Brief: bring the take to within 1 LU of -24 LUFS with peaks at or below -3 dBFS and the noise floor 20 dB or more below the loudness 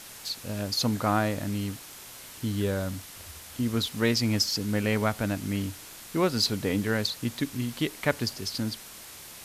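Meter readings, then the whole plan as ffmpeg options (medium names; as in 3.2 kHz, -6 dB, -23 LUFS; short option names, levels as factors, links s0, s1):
noise floor -45 dBFS; noise floor target -49 dBFS; loudness -28.5 LUFS; peak level -10.0 dBFS; loudness target -24.0 LUFS
-> -af "afftdn=nr=6:nf=-45"
-af "volume=1.68"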